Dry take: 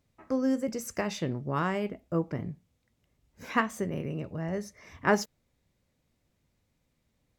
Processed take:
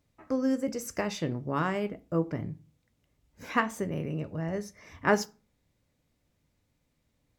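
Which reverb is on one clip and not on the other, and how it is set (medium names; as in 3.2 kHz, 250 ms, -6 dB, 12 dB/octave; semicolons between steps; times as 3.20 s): FDN reverb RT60 0.35 s, low-frequency decay 1.45×, high-frequency decay 0.7×, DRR 13.5 dB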